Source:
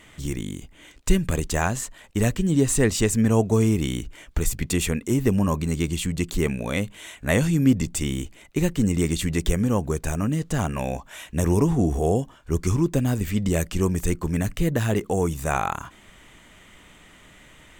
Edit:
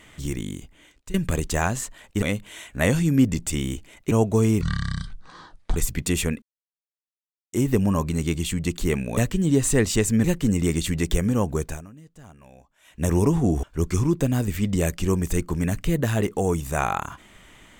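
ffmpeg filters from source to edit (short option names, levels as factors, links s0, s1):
-filter_complex "[0:a]asplit=12[s0][s1][s2][s3][s4][s5][s6][s7][s8][s9][s10][s11];[s0]atrim=end=1.14,asetpts=PTS-STARTPTS,afade=t=out:st=0.54:d=0.6:silence=0.0891251[s12];[s1]atrim=start=1.14:end=2.222,asetpts=PTS-STARTPTS,afade=t=in:d=0.004:c=hsin:silence=0.0891251[s13];[s2]atrim=start=6.698:end=8.592[s14];[s3]atrim=start=3.288:end=3.794[s15];[s4]atrim=start=3.79:end=4.4,asetpts=PTS-STARTPTS,asetrate=23373,aresample=44100[s16];[s5]atrim=start=4.396:end=5.06,asetpts=PTS-STARTPTS,afade=t=out:st=0.66:d=0.004:c=hsin,apad=pad_dur=1.11[s17];[s6]atrim=start=5.06:end=6.702,asetpts=PTS-STARTPTS,afade=t=in:d=0.004:c=hsin[s18];[s7]atrim=start=2.218:end=3.292[s19];[s8]atrim=start=8.588:end=10.27,asetpts=PTS-STARTPTS,afade=t=out:st=1.412:d=0.27:c=qua:silence=0.0794328[s20];[s9]atrim=start=10.27:end=11.12,asetpts=PTS-STARTPTS,volume=0.0794[s21];[s10]atrim=start=11.12:end=11.982,asetpts=PTS-STARTPTS,afade=t=in:d=0.27:c=qua:silence=0.0794328[s22];[s11]atrim=start=12.358[s23];[s12][s13]concat=n=2:v=0:a=1[s24];[s24][s14]acrossfade=d=0.004:c1=hsin:c2=hsin[s25];[s25][s15]acrossfade=d=0.004:c1=hsin:c2=hsin[s26];[s26][s16]acrossfade=d=0.004:c1=hsin:c2=hsin[s27];[s17][s18]concat=n=2:v=0:a=1[s28];[s27][s28]acrossfade=d=0.004:c1=hsin:c2=hsin[s29];[s29][s19]acrossfade=d=0.004:c1=hsin:c2=hsin[s30];[s20][s21][s22]concat=n=3:v=0:a=1[s31];[s30][s31]acrossfade=d=0.004:c1=hsin:c2=hsin[s32];[s32][s23]acrossfade=d=0.004:c1=hsin:c2=hsin"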